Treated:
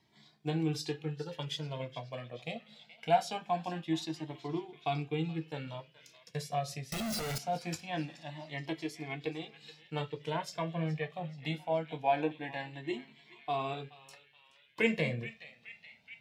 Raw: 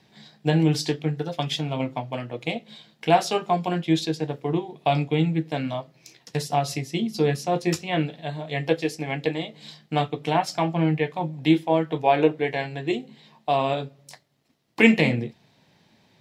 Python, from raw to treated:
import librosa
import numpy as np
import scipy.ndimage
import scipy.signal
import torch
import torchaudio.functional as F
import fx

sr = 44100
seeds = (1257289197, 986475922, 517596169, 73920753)

y = fx.clip_1bit(x, sr, at=(6.92, 7.38))
y = fx.echo_banded(y, sr, ms=425, feedback_pct=73, hz=2800.0, wet_db=-14.0)
y = fx.comb_cascade(y, sr, direction='rising', hz=0.23)
y = F.gain(torch.from_numpy(y), -7.0).numpy()